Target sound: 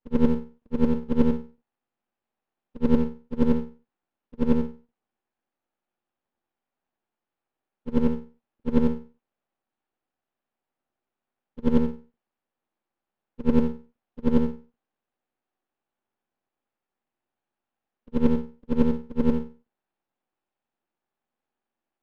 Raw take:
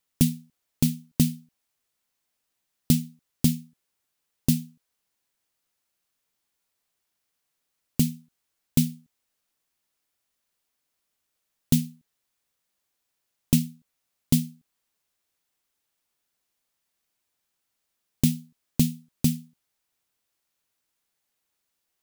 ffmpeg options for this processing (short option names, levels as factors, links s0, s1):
-af "afftfilt=real='re':imag='-im':win_size=8192:overlap=0.75,highpass=f=110:w=0.5412,highpass=f=110:w=1.3066,equalizer=f=150:t=q:w=4:g=-3,equalizer=f=230:t=q:w=4:g=10,equalizer=f=350:t=q:w=4:g=8,equalizer=f=550:t=q:w=4:g=4,equalizer=f=790:t=q:w=4:g=9,equalizer=f=2100:t=q:w=4:g=-8,lowpass=f=2500:w=0.5412,lowpass=f=2500:w=1.3066,aeval=exprs='max(val(0),0)':c=same,volume=1.88"